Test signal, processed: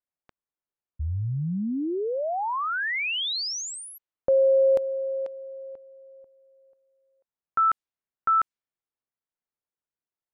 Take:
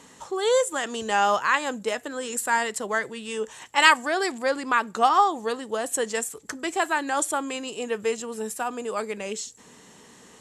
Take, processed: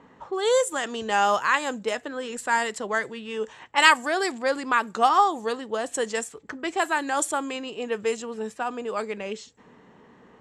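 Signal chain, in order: low-pass opened by the level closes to 1500 Hz, open at -20 dBFS

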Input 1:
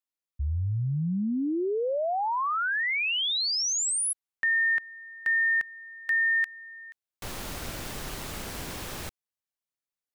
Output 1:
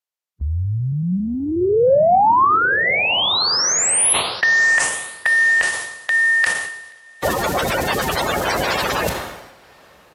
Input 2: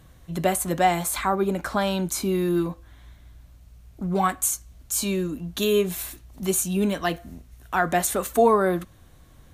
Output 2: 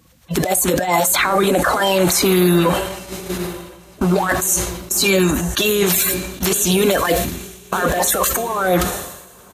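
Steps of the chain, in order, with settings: bin magnitudes rounded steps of 30 dB; HPF 47 Hz 24 dB/oct; resonant low shelf 390 Hz -6 dB, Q 1.5; harmonic-percussive split harmonic -7 dB; bell 10000 Hz -3.5 dB 0.37 oct; negative-ratio compressor -34 dBFS, ratio -1; resonator 180 Hz, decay 0.49 s, harmonics all, mix 50%; diffused feedback echo 1.003 s, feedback 51%, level -13.5 dB; downsampling 32000 Hz; gate -47 dBFS, range -15 dB; maximiser +29.5 dB; sustainer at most 57 dB/s; gain -5.5 dB

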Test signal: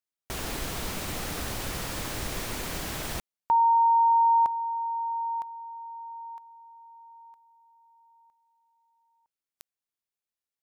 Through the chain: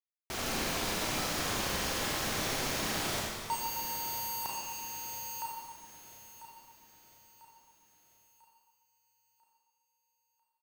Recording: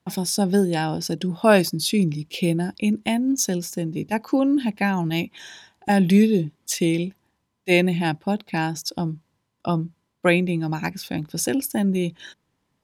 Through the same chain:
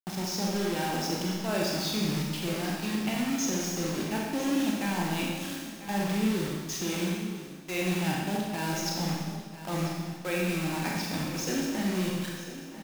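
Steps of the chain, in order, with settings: expander -46 dBFS; low shelf 100 Hz -10 dB; reverse; compressor 6:1, threshold -28 dBFS; reverse; brick-wall FIR low-pass 7100 Hz; bit-crush 6-bit; on a send: feedback echo 0.995 s, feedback 47%, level -13.5 dB; on the sum: Schroeder reverb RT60 1.4 s, combs from 29 ms, DRR -2.5 dB; gain -3 dB

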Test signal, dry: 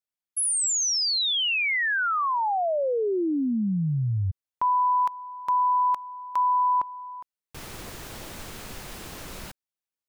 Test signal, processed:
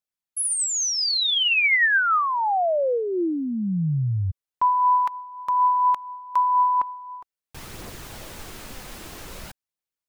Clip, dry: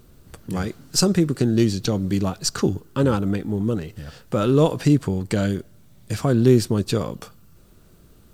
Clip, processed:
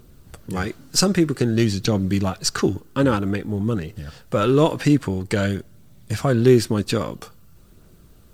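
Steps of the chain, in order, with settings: phaser 0.51 Hz, delay 4.1 ms, feedback 24%; dynamic EQ 1900 Hz, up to +6 dB, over -39 dBFS, Q 0.86

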